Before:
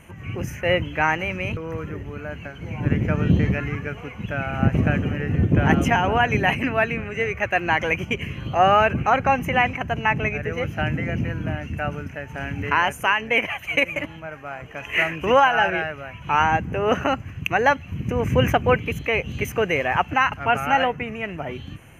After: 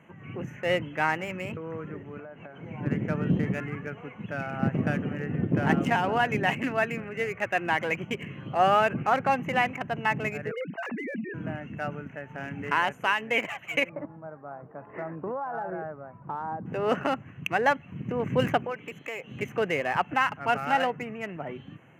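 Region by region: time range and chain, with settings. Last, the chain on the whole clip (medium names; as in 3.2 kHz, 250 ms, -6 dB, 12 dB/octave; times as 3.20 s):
2.19–2.63 s: peaking EQ 680 Hz +8.5 dB 1.8 oct + compression 16:1, threshold -33 dBFS
10.51–11.34 s: formants replaced by sine waves + compression, threshold -24 dBFS
13.89–16.66 s: low-pass 1.2 kHz 24 dB/octave + compression 16:1, threshold -23 dBFS
18.64–19.31 s: high-pass 480 Hz 6 dB/octave + compression 3:1, threshold -25 dBFS
whole clip: local Wiener filter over 9 samples; high-pass 130 Hz 24 dB/octave; band-stop 2.4 kHz, Q 21; trim -5 dB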